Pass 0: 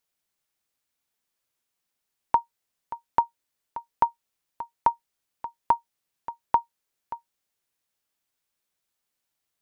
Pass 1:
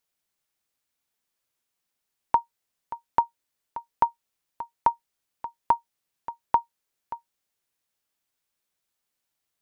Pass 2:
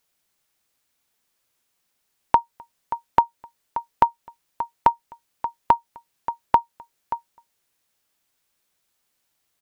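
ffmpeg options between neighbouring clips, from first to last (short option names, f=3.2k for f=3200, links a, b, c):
-af anull
-filter_complex "[0:a]asplit=2[a][b];[b]acompressor=threshold=-27dB:ratio=6,volume=1.5dB[c];[a][c]amix=inputs=2:normalize=0,asplit=2[d][e];[e]adelay=256.6,volume=-28dB,highshelf=f=4k:g=-5.77[f];[d][f]amix=inputs=2:normalize=0,volume=1.5dB"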